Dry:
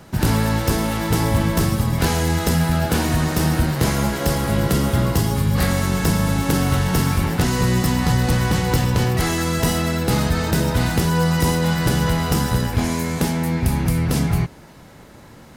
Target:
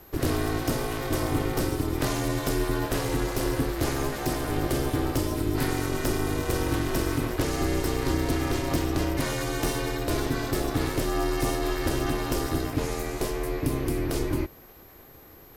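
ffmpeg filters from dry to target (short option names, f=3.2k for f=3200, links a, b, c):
-af "aeval=exprs='val(0)+0.00631*sin(2*PI*12000*n/s)':c=same,aeval=exprs='val(0)*sin(2*PI*200*n/s)':c=same,volume=-5dB"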